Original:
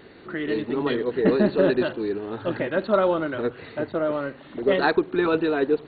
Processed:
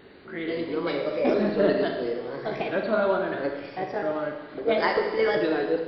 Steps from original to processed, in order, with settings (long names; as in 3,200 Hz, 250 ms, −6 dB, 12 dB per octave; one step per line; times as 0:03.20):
pitch shifter swept by a sawtooth +4.5 semitones, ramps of 1,341 ms
four-comb reverb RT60 1.3 s, combs from 28 ms, DRR 3 dB
level −3 dB